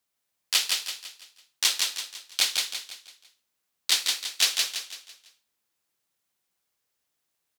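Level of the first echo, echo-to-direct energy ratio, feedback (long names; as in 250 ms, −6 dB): −3.5 dB, −2.5 dB, 41%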